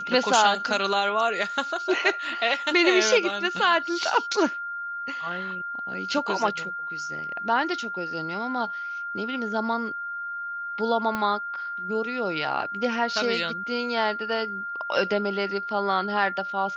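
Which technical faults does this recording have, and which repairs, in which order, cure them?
whistle 1,400 Hz −30 dBFS
0:11.15: click −14 dBFS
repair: click removal
notch filter 1,400 Hz, Q 30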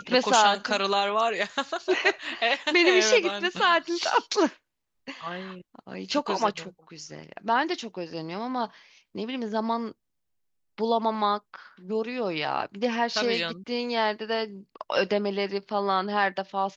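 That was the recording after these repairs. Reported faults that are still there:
0:11.15: click

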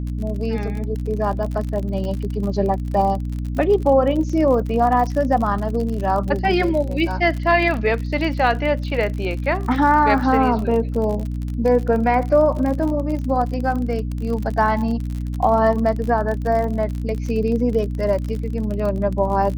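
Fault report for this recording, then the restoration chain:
surface crackle 46 per second −26 dBFS
mains hum 60 Hz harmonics 5 −25 dBFS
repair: click removal
hum removal 60 Hz, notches 5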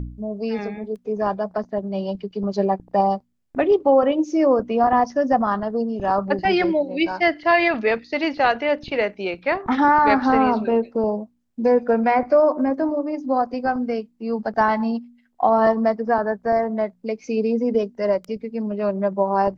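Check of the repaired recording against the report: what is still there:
none of them is left

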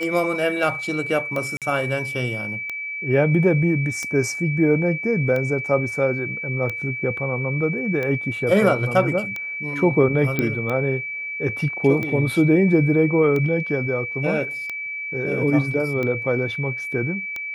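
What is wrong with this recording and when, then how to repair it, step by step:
scratch tick 45 rpm −15 dBFS
whistle 2,300 Hz −27 dBFS
0:01.57–0:01.62: drop-out 47 ms
0:10.39: click −8 dBFS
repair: click removal
notch filter 2,300 Hz, Q 30
repair the gap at 0:01.57, 47 ms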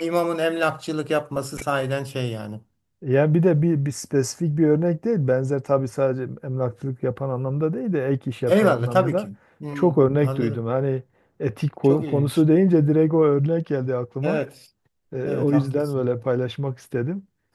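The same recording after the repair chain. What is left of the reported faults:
none of them is left

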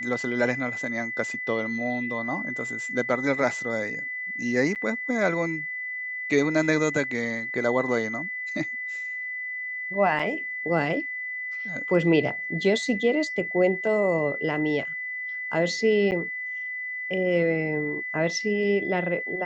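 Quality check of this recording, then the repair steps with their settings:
whistle 2,000 Hz −30 dBFS
0:04.75–0:04.76: drop-out 8.3 ms
0:10.19–0:10.20: drop-out 5 ms
0:16.11–0:16.12: drop-out 9.2 ms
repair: notch filter 2,000 Hz, Q 30
repair the gap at 0:04.75, 8.3 ms
repair the gap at 0:10.19, 5 ms
repair the gap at 0:16.11, 9.2 ms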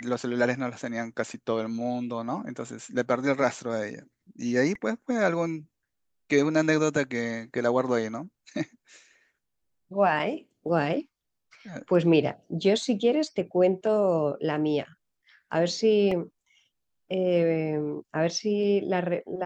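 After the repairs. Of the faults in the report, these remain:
none of them is left

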